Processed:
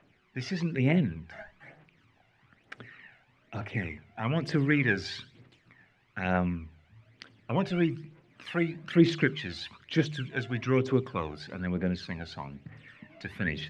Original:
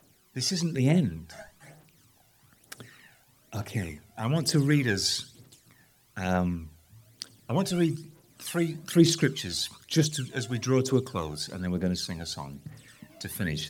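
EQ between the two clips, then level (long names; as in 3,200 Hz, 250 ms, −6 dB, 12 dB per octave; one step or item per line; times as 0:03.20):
low-pass with resonance 2,300 Hz, resonance Q 2
mains-hum notches 50/100/150 Hz
−1.5 dB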